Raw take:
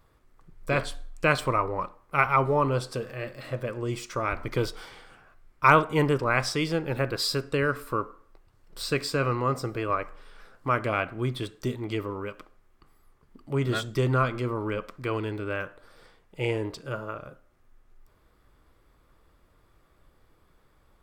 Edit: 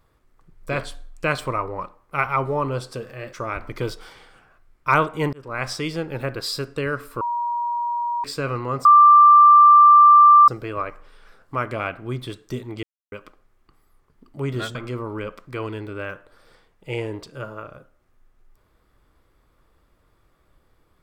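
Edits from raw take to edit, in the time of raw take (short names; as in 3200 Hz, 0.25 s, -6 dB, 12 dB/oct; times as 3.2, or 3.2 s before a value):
3.33–4.09 cut
6.09–6.46 fade in
7.97–9 bleep 952 Hz -21.5 dBFS
9.61 add tone 1180 Hz -7 dBFS 1.63 s
11.96–12.25 mute
13.88–14.26 cut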